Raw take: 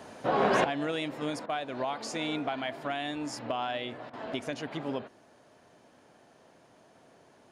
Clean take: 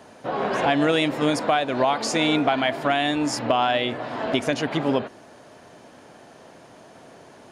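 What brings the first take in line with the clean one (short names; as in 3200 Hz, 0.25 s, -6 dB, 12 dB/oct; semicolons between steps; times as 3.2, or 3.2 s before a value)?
interpolate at 1.46/4.1, 32 ms; gain 0 dB, from 0.64 s +12 dB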